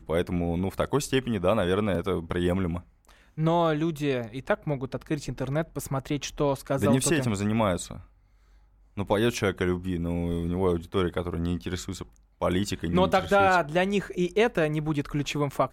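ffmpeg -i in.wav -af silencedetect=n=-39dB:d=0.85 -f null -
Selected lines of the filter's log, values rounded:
silence_start: 8.01
silence_end: 8.97 | silence_duration: 0.97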